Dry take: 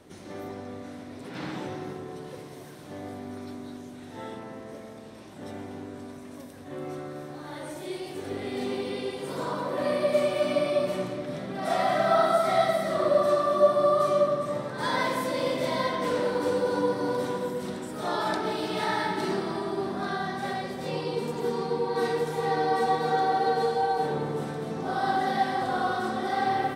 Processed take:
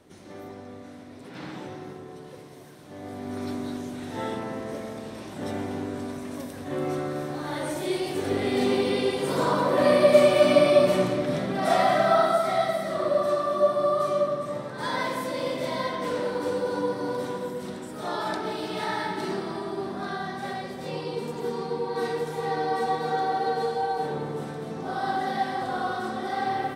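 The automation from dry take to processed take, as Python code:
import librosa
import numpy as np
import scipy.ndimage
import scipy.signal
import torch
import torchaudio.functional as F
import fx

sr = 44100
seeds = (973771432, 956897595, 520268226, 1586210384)

y = fx.gain(x, sr, db=fx.line((2.91, -3.0), (3.46, 7.5), (11.36, 7.5), (12.58, -1.5)))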